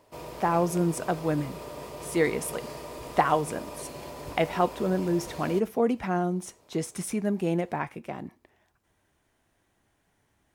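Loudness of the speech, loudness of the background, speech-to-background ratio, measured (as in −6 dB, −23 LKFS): −28.5 LKFS, −40.5 LKFS, 12.0 dB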